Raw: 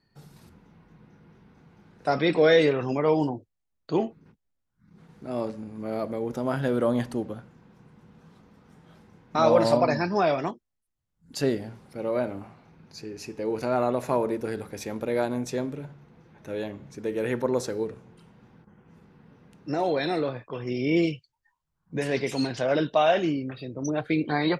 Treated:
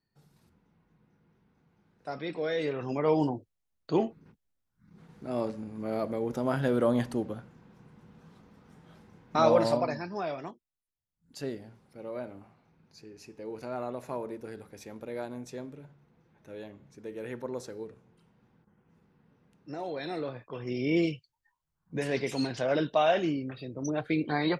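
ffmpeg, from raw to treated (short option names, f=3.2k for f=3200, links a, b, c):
-af "volume=6dB,afade=t=in:st=2.55:d=0.71:silence=0.266073,afade=t=out:st=9.37:d=0.64:silence=0.334965,afade=t=in:st=19.91:d=0.87:silence=0.421697"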